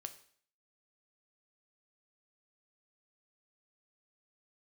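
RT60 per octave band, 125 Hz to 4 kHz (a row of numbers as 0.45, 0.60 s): 0.55, 0.55, 0.55, 0.55, 0.55, 0.55 s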